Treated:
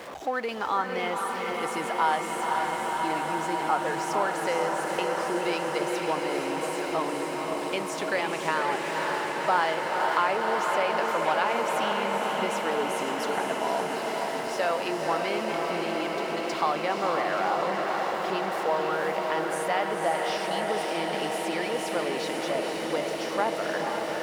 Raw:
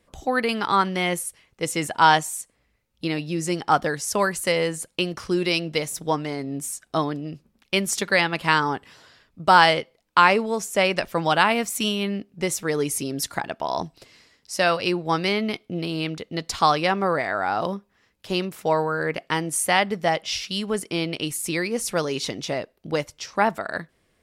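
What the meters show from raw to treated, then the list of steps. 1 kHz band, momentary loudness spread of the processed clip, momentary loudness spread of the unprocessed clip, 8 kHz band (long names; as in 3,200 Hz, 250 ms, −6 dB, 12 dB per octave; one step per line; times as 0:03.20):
−3.0 dB, 4 LU, 11 LU, −9.5 dB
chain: converter with a step at zero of −27 dBFS
echo that builds up and dies away 139 ms, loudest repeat 5, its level −17 dB
downward compressor 2 to 1, threshold −21 dBFS, peak gain reduction 7 dB
high-pass filter 680 Hz 12 dB per octave
spectral tilt −4.5 dB per octave
feedback delay with all-pass diffusion 507 ms, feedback 78%, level −4 dB
level −3 dB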